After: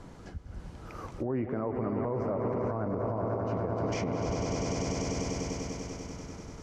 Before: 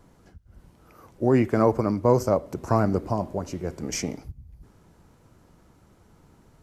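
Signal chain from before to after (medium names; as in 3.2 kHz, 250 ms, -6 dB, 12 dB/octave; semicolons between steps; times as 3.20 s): low-pass 7.3 kHz 12 dB/octave; echo with a slow build-up 98 ms, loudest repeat 5, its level -13 dB; low-pass that closes with the level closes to 1.8 kHz, closed at -20.5 dBFS; compression 5:1, threshold -33 dBFS, peak gain reduction 17.5 dB; peak limiter -31 dBFS, peak gain reduction 10 dB; trim +8 dB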